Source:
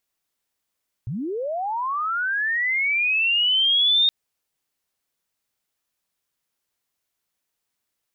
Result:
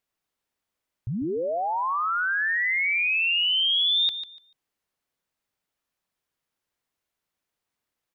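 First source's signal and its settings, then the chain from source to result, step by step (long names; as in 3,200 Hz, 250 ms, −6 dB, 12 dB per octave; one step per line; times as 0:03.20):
glide linear 99 Hz → 3,700 Hz −25.5 dBFS → −14.5 dBFS 3.02 s
high-shelf EQ 3,500 Hz −8.5 dB
on a send: repeating echo 146 ms, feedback 21%, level −11 dB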